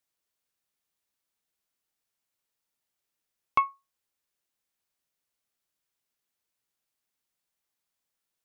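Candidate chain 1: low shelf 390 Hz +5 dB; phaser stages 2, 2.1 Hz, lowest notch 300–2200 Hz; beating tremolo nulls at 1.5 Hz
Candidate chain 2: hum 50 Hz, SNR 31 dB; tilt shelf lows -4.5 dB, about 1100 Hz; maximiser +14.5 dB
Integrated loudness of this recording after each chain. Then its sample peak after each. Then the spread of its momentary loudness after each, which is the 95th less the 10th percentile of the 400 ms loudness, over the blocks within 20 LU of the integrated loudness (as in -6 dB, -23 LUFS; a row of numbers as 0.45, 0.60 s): -45.5, -18.5 LUFS; -23.5, -1.0 dBFS; 5, 4 LU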